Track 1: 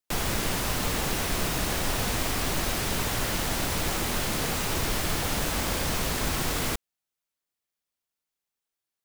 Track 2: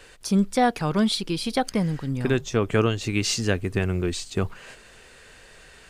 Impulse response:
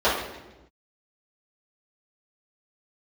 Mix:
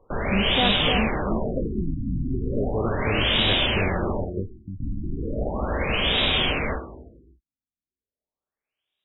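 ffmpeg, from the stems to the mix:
-filter_complex "[0:a]highshelf=f=2.1k:t=q:w=1.5:g=12,volume=1.5dB,asplit=3[a][b][c];[a]atrim=end=4.25,asetpts=PTS-STARTPTS,afade=t=out:st=4.246:d=0.004:c=hsin[d];[b]atrim=start=4.25:end=4.8,asetpts=PTS-STARTPTS,volume=0[e];[c]atrim=start=4.8,asetpts=PTS-STARTPTS,afade=t=in:d=0.004:c=hsin[f];[d][e][f]concat=n=3:v=0:a=1,asplit=2[g][h];[h]volume=-20dB[i];[1:a]volume=-6dB,asplit=2[j][k];[k]volume=-3dB[l];[2:a]atrim=start_sample=2205[m];[i][m]afir=irnorm=-1:irlink=0[n];[l]aecho=0:1:308:1[o];[g][j][n][o]amix=inputs=4:normalize=0,afftfilt=real='re*lt(b*sr/1024,310*pow(3900/310,0.5+0.5*sin(2*PI*0.36*pts/sr)))':imag='im*lt(b*sr/1024,310*pow(3900/310,0.5+0.5*sin(2*PI*0.36*pts/sr)))':win_size=1024:overlap=0.75"

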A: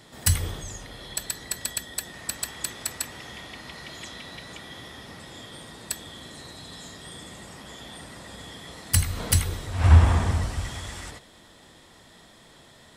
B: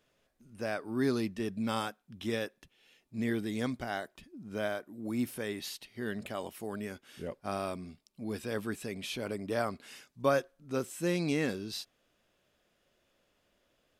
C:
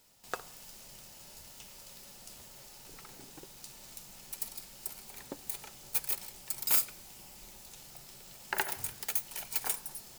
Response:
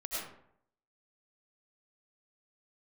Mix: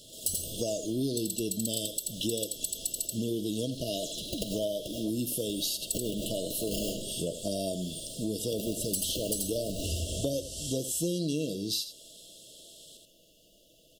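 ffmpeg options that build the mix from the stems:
-filter_complex "[0:a]bass=f=250:g=-13,treble=f=4k:g=3,asoftclip=type=tanh:threshold=-17dB,volume=-4dB,asplit=2[a][b];[b]volume=-3.5dB[c];[1:a]aecho=1:1:6.3:0.42,acontrast=75,volume=3dB,asplit=3[d][e][f];[e]volume=-14.5dB[g];[2:a]acrusher=samples=32:mix=1:aa=0.000001:lfo=1:lforange=19.2:lforate=0.85,volume=1dB,asplit=2[h][i];[i]volume=-3.5dB[j];[f]apad=whole_len=448947[k];[h][k]sidechaincompress=threshold=-33dB:ratio=8:attack=16:release=323[l];[3:a]atrim=start_sample=2205[m];[j][m]afir=irnorm=-1:irlink=0[n];[c][g]amix=inputs=2:normalize=0,aecho=0:1:83:1[o];[a][d][l][n][o]amix=inputs=5:normalize=0,afftfilt=real='re*(1-between(b*sr/4096,680,2700))':imag='im*(1-between(b*sr/4096,680,2700))':win_size=4096:overlap=0.75,highshelf=f=4k:g=9,acompressor=threshold=-29dB:ratio=5"

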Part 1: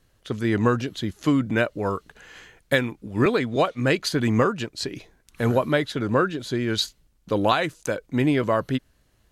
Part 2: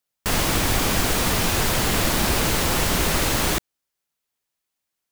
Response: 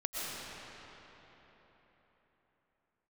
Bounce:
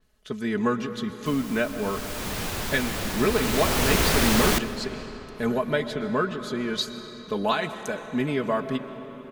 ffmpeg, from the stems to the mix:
-filter_complex "[0:a]aecho=1:1:4.7:0.76,volume=-7dB,asplit=2[a][b];[b]volume=-12.5dB[c];[1:a]acrusher=bits=3:mix=0:aa=0.000001,adelay=1000,volume=-1.5dB,afade=t=in:st=1.76:d=0.64:silence=0.266073,afade=t=in:st=3.26:d=0.75:silence=0.354813,asplit=2[d][e];[e]volume=-17dB[f];[2:a]atrim=start_sample=2205[g];[c][f]amix=inputs=2:normalize=0[h];[h][g]afir=irnorm=-1:irlink=0[i];[a][d][i]amix=inputs=3:normalize=0,adynamicequalizer=threshold=0.00891:dfrequency=5500:dqfactor=0.7:tfrequency=5500:tqfactor=0.7:attack=5:release=100:ratio=0.375:range=2:mode=cutabove:tftype=highshelf"

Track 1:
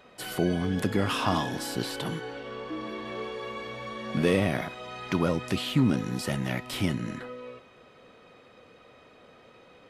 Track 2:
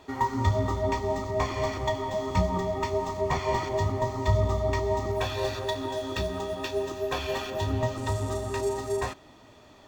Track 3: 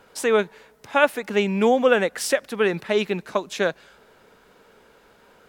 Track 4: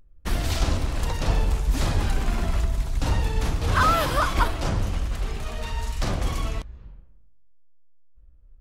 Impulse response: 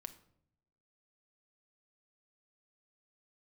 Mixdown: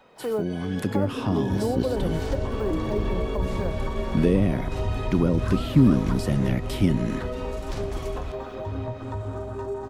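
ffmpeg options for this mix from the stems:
-filter_complex "[0:a]dynaudnorm=f=140:g=13:m=12.5dB,volume=-3.5dB[a];[1:a]afwtdn=0.0251,acompressor=threshold=-29dB:ratio=2,adelay=1050,volume=0.5dB[b];[2:a]lowpass=f=920:t=q:w=1.8,acrusher=bits=7:mode=log:mix=0:aa=0.000001,volume=-6.5dB[c];[3:a]adelay=1700,volume=-6.5dB[d];[a][b][c][d]amix=inputs=4:normalize=0,acrossover=split=460[e][f];[f]acompressor=threshold=-34dB:ratio=10[g];[e][g]amix=inputs=2:normalize=0"

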